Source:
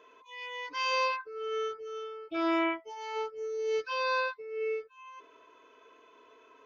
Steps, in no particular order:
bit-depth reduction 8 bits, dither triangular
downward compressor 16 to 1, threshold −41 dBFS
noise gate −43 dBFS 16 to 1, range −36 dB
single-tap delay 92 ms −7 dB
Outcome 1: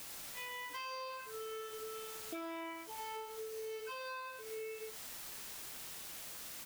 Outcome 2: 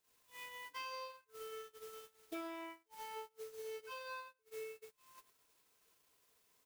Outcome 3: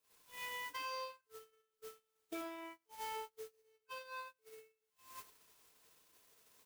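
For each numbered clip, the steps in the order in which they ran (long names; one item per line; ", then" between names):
noise gate, then bit-depth reduction, then single-tap delay, then downward compressor
single-tap delay, then bit-depth reduction, then downward compressor, then noise gate
bit-depth reduction, then downward compressor, then single-tap delay, then noise gate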